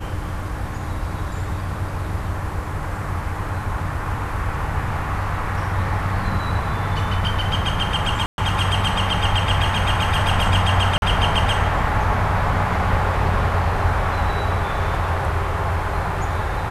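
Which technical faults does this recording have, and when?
8.26–8.38 gap 0.121 s
10.98–11.02 gap 41 ms

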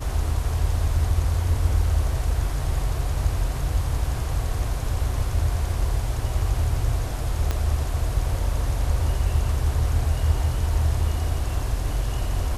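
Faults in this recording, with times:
7.51 pop -11 dBFS

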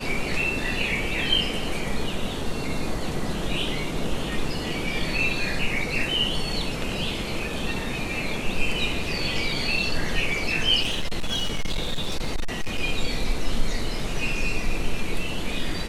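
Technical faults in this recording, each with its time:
10.82–12.8 clipped -20.5 dBFS

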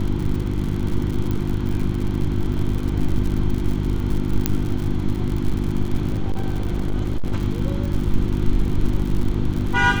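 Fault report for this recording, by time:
crackle 94/s -26 dBFS
hum 50 Hz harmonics 7 -24 dBFS
1.31 pop -13 dBFS
4.46 pop -2 dBFS
6.08–7.36 clipped -16.5 dBFS

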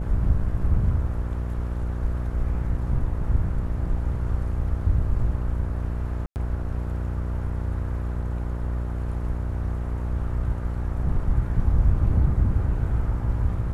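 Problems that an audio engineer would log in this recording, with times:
buzz 60 Hz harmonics 11 -28 dBFS
6.26–6.36 gap 99 ms

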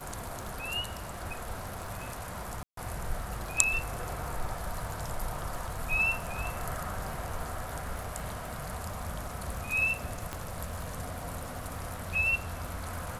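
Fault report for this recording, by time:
crackle 52/s -40 dBFS
2.63–2.77 gap 0.143 s
10.33 pop -20 dBFS

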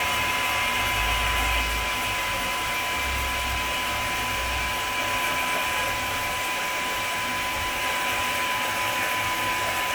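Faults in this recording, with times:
tone 1000 Hz -29 dBFS
1.61–5 clipped -23 dBFS
5.91–7.85 clipped -23.5 dBFS

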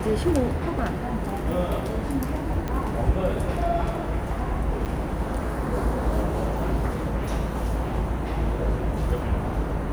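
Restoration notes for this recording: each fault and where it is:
2.68 pop -16 dBFS
4.85–4.86 gap 8.9 ms

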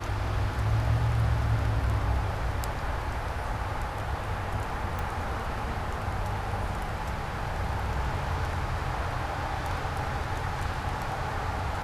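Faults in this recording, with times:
4.99 pop

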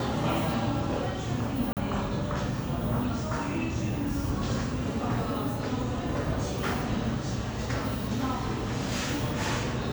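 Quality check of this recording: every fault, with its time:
1.73–1.77 gap 38 ms

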